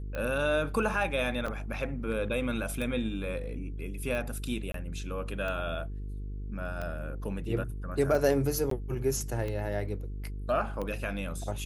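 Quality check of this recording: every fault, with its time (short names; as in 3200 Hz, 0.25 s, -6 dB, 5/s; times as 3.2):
buzz 50 Hz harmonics 9 -37 dBFS
tick 45 rpm -23 dBFS
1.46–1.47 gap 5 ms
4.72–4.74 gap 23 ms
8.7–8.71 gap 13 ms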